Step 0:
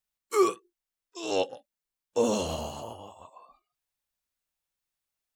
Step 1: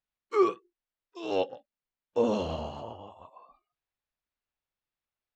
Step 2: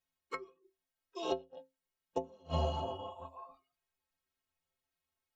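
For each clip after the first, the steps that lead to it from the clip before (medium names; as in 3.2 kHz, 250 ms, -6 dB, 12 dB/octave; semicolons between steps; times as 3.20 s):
distance through air 230 m
inverted gate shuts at -21 dBFS, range -34 dB; inharmonic resonator 79 Hz, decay 0.35 s, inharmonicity 0.03; trim +11.5 dB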